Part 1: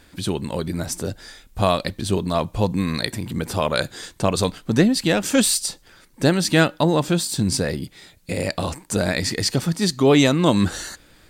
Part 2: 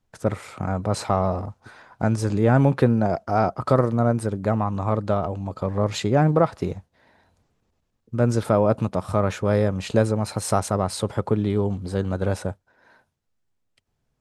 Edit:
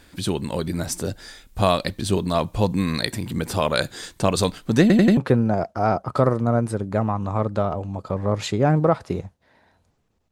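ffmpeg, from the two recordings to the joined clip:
-filter_complex "[0:a]apad=whole_dur=10.31,atrim=end=10.31,asplit=4[a][b][c][d];[a]atrim=end=4.902[e];[b]atrim=start=4.808:end=4.902[f];[c]atrim=start=4.808:end=4.902[g];[d]atrim=start=4.808:end=4.902[h];[1:a]atrim=start=2.688:end=7.83[i];[e][f]acrossfade=d=0.004:c1=hsin:c2=hsin[j];[j][g]acrossfade=d=0.004:c1=hsin:c2=hsin[k];[k][h]acrossfade=d=0.004:c1=hsin:c2=hsin[l];[l][i]acrossfade=d=0.004:c1=hsin:c2=hsin"

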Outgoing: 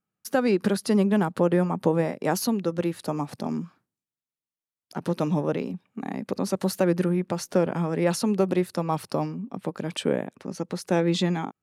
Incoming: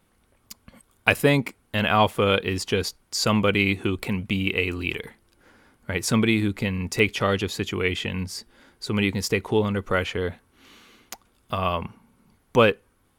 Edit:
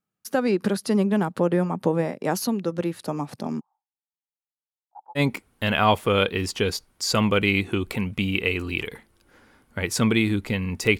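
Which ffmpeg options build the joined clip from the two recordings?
-filter_complex "[0:a]asplit=3[a][b][c];[a]afade=t=out:st=3.59:d=0.02[d];[b]asuperpass=centerf=830:order=4:qfactor=6.4,afade=t=in:st=3.59:d=0.02,afade=t=out:st=5.21:d=0.02[e];[c]afade=t=in:st=5.21:d=0.02[f];[d][e][f]amix=inputs=3:normalize=0,apad=whole_dur=10.99,atrim=end=10.99,atrim=end=5.21,asetpts=PTS-STARTPTS[g];[1:a]atrim=start=1.27:end=7.11,asetpts=PTS-STARTPTS[h];[g][h]acrossfade=d=0.06:c1=tri:c2=tri"

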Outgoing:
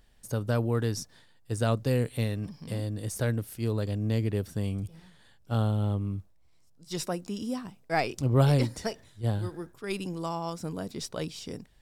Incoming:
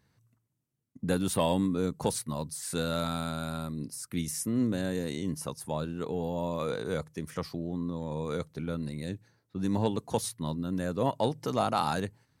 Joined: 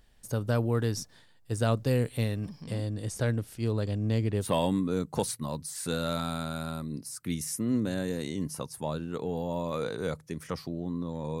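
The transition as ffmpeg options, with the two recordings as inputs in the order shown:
-filter_complex "[0:a]asettb=1/sr,asplit=3[a][b][c];[a]atrim=end=2.624[d];[b]atrim=start=2.62:end=4.51,asetpts=PTS-STARTPTS,afade=t=in:d=0.004:c=qsin,afade=t=out:st=1.886:d=0.004:c=qsin,lowpass=9.2k[e];[c]atrim=start=4.506[f];[d][e]acrossfade=d=0.004:c1=hsin:c2=qsin[g];[g][f]acrossfade=d=0.004:c1=qsin:c2=hsin,apad=whole_dur=11.4,atrim=end=11.4,atrim=end=4.51,asetpts=PTS-STARTPTS[h];[1:a]atrim=start=1.26:end=8.27,asetpts=PTS-STARTPTS[i];[h][i]acrossfade=d=0.12:c1=tri:c2=tri"

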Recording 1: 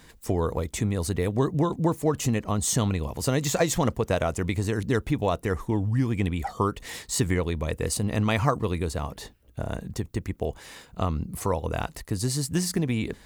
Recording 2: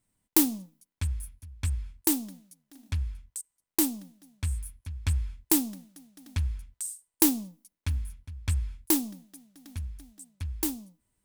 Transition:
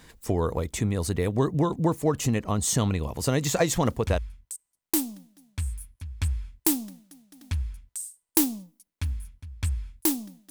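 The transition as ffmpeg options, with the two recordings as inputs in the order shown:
-filter_complex "[0:a]apad=whole_dur=10.5,atrim=end=10.5,atrim=end=4.18,asetpts=PTS-STARTPTS[a];[1:a]atrim=start=2.61:end=9.35,asetpts=PTS-STARTPTS[b];[a][b]acrossfade=d=0.42:c1=log:c2=log"

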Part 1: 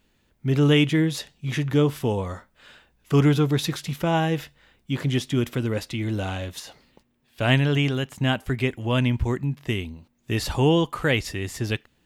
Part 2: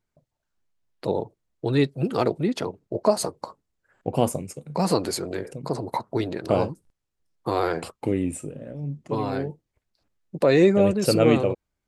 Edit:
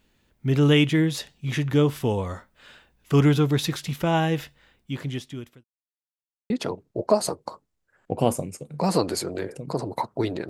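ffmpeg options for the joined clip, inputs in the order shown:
-filter_complex "[0:a]apad=whole_dur=10.49,atrim=end=10.49,asplit=2[a][b];[a]atrim=end=5.64,asetpts=PTS-STARTPTS,afade=t=out:st=4.47:d=1.17[c];[b]atrim=start=5.64:end=6.5,asetpts=PTS-STARTPTS,volume=0[d];[1:a]atrim=start=2.46:end=6.45,asetpts=PTS-STARTPTS,afade=t=in:d=0.004:c=hsin[e];[c][d][e]concat=n=3:v=0:a=1"

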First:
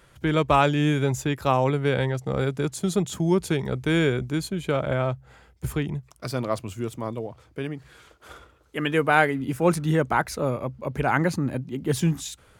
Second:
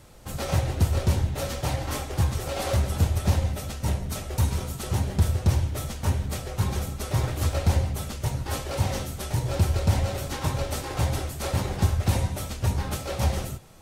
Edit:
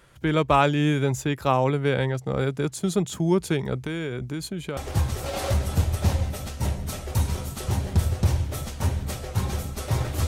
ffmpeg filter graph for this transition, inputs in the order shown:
-filter_complex "[0:a]asettb=1/sr,asplit=3[a][b][c];[a]atrim=end=3.814[d];[b]atrim=start=3.81:end=4.77,asetpts=PTS-STARTPTS,afade=t=in:d=0.004:c=qsin,afade=t=out:st=0.956:d=0.004:c=qsin,acompressor=threshold=-26dB:ratio=5:attack=3.2:release=140:knee=1:detection=peak[e];[c]atrim=start=4.766[f];[d][e]acrossfade=d=0.004:c1=hsin:c2=qsin[g];[g][f]acrossfade=d=0.004:c1=qsin:c2=hsin,apad=whole_dur=10.27,atrim=end=10.27,atrim=end=4.772[h];[1:a]atrim=start=1.998:end=7.5[i];[h][i]acrossfade=d=0.004:c1=hsin:c2=hsin"

